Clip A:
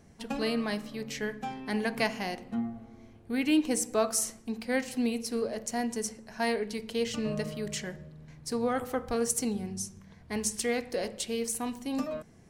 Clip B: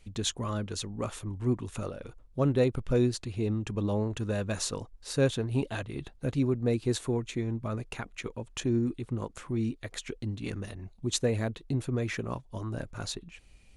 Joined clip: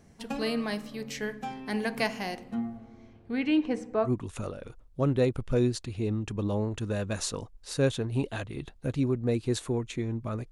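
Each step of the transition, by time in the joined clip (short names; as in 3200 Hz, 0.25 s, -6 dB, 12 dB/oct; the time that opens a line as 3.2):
clip A
2.77–4.12 LPF 8400 Hz -> 1400 Hz
4.07 switch to clip B from 1.46 s, crossfade 0.10 s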